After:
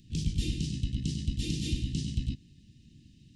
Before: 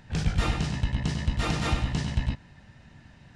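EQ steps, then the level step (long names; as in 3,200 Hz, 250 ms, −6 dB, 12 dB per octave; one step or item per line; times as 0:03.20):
elliptic band-stop filter 320–2,800 Hz, stop band 60 dB
low-shelf EQ 150 Hz −5.5 dB
parametric band 2,400 Hz −6.5 dB 0.96 octaves
0.0 dB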